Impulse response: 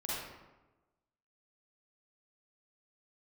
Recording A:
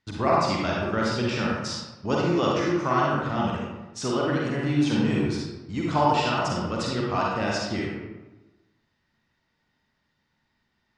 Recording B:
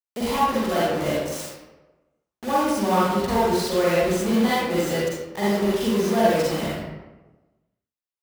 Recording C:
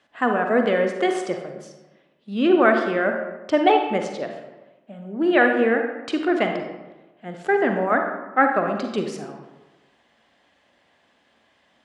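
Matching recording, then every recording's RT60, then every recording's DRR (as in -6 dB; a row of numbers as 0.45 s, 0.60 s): B; 1.1 s, 1.1 s, 1.1 s; -4.0 dB, -8.5 dB, 4.0 dB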